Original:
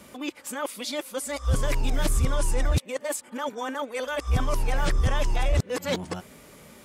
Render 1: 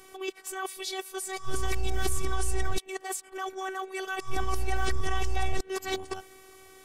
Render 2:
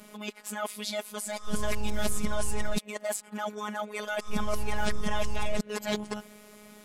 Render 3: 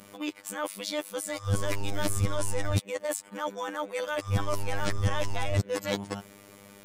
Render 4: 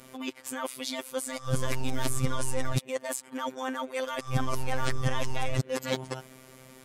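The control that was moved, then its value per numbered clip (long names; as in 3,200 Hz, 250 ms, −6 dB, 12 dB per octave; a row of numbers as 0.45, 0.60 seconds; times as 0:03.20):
phases set to zero, frequency: 380, 210, 100, 130 Hertz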